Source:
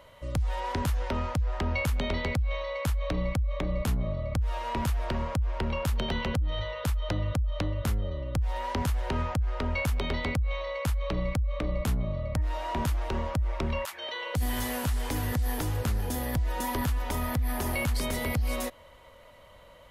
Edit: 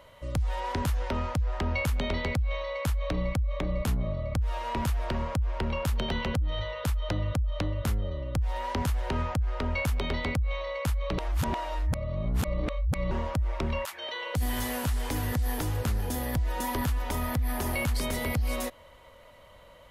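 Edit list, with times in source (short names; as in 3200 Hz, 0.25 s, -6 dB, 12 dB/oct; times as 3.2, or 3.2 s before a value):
11.18–13.11 reverse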